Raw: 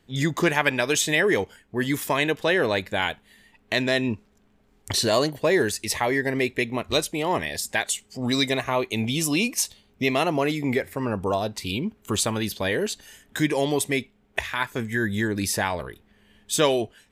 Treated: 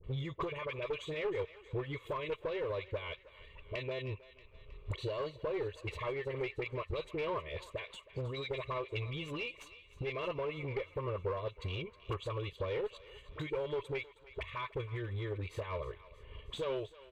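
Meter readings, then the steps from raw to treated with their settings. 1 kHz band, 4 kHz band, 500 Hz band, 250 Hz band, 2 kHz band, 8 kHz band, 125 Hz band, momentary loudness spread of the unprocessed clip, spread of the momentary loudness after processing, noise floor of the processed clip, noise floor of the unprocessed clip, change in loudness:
-14.5 dB, -18.5 dB, -12.0 dB, -20.0 dB, -18.5 dB, under -30 dB, -9.5 dB, 7 LU, 9 LU, -60 dBFS, -62 dBFS, -15.0 dB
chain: low shelf 220 Hz +5 dB; comb 1.8 ms, depth 57%; limiter -13 dBFS, peak gain reduction 8 dB; transient shaper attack +6 dB, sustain -9 dB; compressor 5:1, threshold -36 dBFS, peak gain reduction 20 dB; soft clip -29 dBFS, distortion -16 dB; fixed phaser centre 1100 Hz, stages 8; dispersion highs, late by 41 ms, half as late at 970 Hz; one-sided clip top -38.5 dBFS; air absorption 200 m; thinning echo 0.316 s, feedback 64%, high-pass 890 Hz, level -15 dB; gain +5.5 dB

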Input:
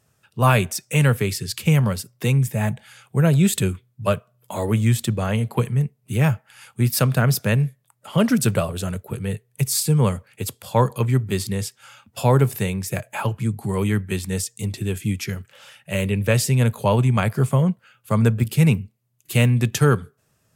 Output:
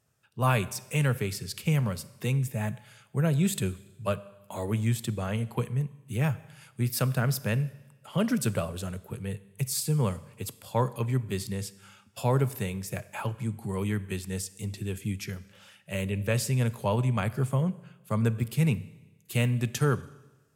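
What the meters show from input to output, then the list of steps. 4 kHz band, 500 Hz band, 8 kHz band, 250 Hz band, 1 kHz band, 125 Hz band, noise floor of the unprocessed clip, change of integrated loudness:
-8.5 dB, -8.5 dB, -8.5 dB, -8.5 dB, -8.5 dB, -8.5 dB, -66 dBFS, -8.5 dB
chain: Schroeder reverb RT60 1.1 s, combs from 31 ms, DRR 17 dB; gain -8.5 dB

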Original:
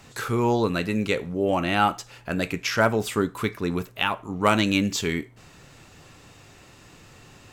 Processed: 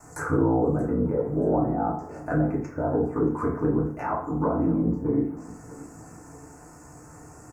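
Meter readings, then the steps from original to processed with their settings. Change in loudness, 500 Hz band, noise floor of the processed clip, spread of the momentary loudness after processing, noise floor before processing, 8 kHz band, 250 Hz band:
-1.0 dB, -0.5 dB, -48 dBFS, 18 LU, -51 dBFS, under -10 dB, +2.0 dB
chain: limiter -15 dBFS, peak gain reduction 6.5 dB; bell 5600 Hz +8.5 dB 1.8 oct; treble ducked by the level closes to 550 Hz, closed at -20.5 dBFS; added harmonics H 2 -20 dB, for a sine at -12.5 dBFS; requantised 12-bit, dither none; bell 720 Hz +4 dB 0.28 oct; ring modulator 29 Hz; Chebyshev band-stop 1300–8200 Hz, order 2; feedback echo 0.628 s, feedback 37%, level -19 dB; FDN reverb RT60 0.53 s, low-frequency decay 1×, high-frequency decay 0.65×, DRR -4.5 dB

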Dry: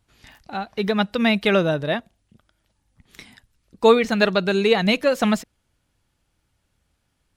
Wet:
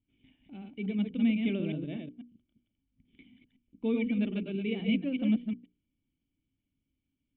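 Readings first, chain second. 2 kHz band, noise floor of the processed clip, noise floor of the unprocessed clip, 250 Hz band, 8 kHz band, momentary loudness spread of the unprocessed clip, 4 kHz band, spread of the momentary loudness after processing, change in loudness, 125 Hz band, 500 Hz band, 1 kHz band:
-18.5 dB, -84 dBFS, -72 dBFS, -6.0 dB, under -35 dB, 10 LU, -18.5 dB, 14 LU, -11.5 dB, -8.5 dB, -19.5 dB, -30.0 dB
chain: reverse delay 0.123 s, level -4 dB; vocal tract filter i; notches 60/120/180/240/300/360/420/480 Hz; gain -2 dB

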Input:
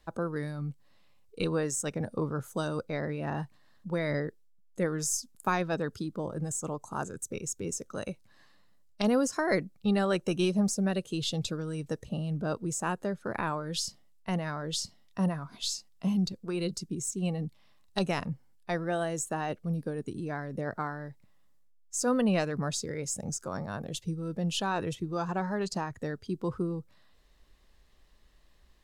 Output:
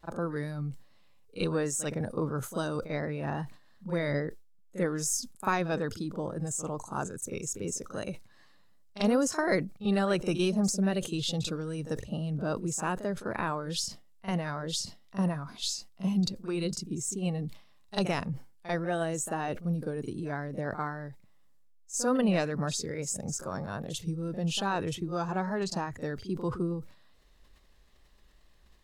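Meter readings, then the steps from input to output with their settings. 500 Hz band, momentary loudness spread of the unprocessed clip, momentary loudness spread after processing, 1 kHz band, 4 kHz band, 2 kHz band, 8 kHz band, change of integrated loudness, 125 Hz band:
+0.5 dB, 9 LU, 9 LU, +0.5 dB, +0.5 dB, +0.5 dB, +0.5 dB, +0.5 dB, +0.5 dB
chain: pre-echo 42 ms -13 dB; vibrato 2.4 Hz 31 cents; sustainer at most 130 dB/s

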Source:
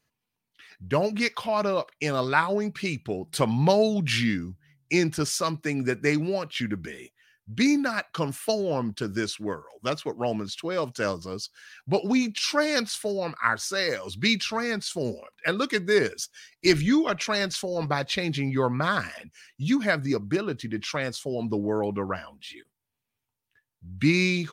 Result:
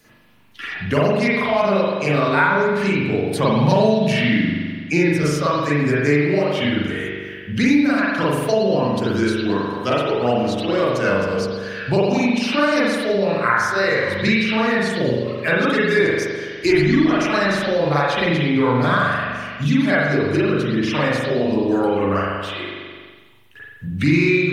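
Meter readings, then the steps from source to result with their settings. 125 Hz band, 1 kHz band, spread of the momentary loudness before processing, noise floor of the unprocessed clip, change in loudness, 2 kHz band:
+9.0 dB, +8.5 dB, 10 LU, -84 dBFS, +8.0 dB, +8.5 dB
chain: bin magnitudes rounded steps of 15 dB; spring tank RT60 1.1 s, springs 41 ms, chirp 75 ms, DRR -9.5 dB; three-band squash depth 70%; gain -1.5 dB

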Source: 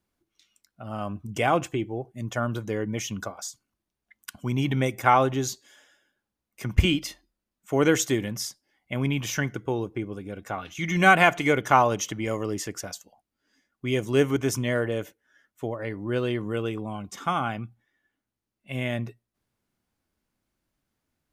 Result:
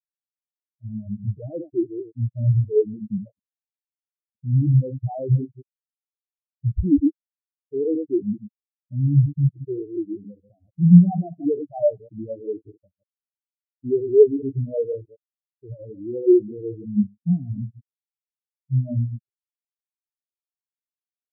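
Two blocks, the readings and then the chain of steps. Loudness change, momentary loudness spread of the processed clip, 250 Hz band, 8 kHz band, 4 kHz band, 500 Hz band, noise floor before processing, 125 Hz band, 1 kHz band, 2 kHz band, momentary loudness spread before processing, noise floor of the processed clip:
+4.0 dB, 17 LU, +6.5 dB, under -40 dB, under -40 dB, +4.5 dB, under -85 dBFS, +9.0 dB, -17.0 dB, under -40 dB, 16 LU, under -85 dBFS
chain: reverse delay 0.106 s, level -6 dB; spectral gate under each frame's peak -10 dB strong; steep low-pass 600 Hz 36 dB/oct; in parallel at -0.5 dB: compressor, threshold -31 dBFS, peak gain reduction 17 dB; on the sum: sample leveller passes 3; maximiser +13.5 dB; spectral expander 4:1; gain -1 dB

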